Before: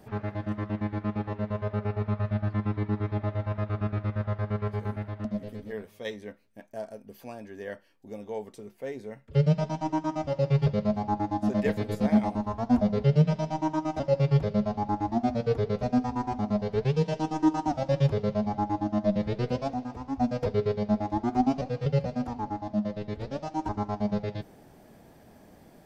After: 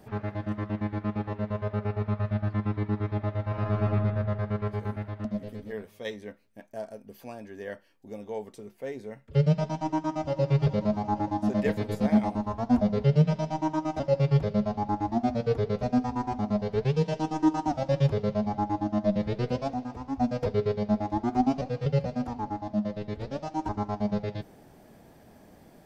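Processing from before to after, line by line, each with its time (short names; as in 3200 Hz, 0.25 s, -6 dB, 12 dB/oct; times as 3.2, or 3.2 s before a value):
3.46–3.87 reverb throw, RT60 1.9 s, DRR -1.5 dB
9.75–10.4 echo throw 0.44 s, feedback 70%, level -14.5 dB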